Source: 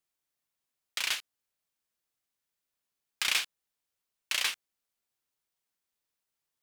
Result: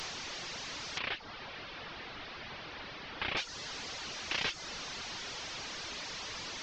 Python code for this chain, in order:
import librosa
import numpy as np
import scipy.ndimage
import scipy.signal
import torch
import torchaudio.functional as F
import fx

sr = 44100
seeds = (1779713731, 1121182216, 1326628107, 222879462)

y = fx.delta_mod(x, sr, bps=32000, step_db=-33.0)
y = fx.dereverb_blind(y, sr, rt60_s=0.64)
y = fx.bessel_lowpass(y, sr, hz=2800.0, order=8, at=(0.98, 3.37))